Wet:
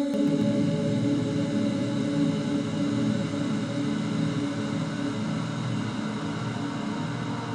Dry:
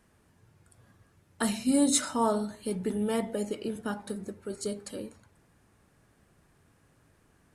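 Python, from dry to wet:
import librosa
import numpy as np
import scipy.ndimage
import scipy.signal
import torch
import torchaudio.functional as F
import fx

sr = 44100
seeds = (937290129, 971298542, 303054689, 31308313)

y = scipy.signal.sosfilt(scipy.signal.butter(2, 2200.0, 'lowpass', fs=sr, output='sos'), x)
y = fx.paulstretch(y, sr, seeds[0], factor=43.0, window_s=0.5, from_s=1.88)
y = fx.comb_fb(y, sr, f0_hz=550.0, decay_s=0.39, harmonics='all', damping=0.0, mix_pct=60)
y = fx.echo_pitch(y, sr, ms=138, semitones=-5, count=3, db_per_echo=-3.0)
y = y * librosa.db_to_amplitude(6.5)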